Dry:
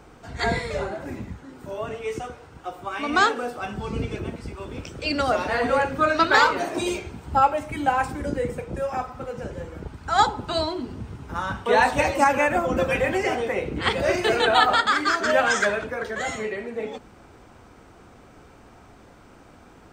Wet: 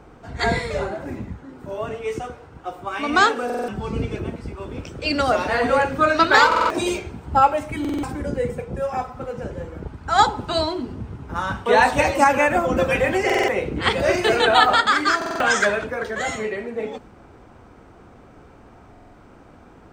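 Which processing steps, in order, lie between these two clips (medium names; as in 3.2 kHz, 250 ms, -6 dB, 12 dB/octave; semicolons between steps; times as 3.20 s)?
8.23–9.17 s: comb of notches 310 Hz; buffer glitch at 3.45/6.47/7.80/13.25/15.17/18.91 s, samples 2048, times 4; tape noise reduction on one side only decoder only; trim +3 dB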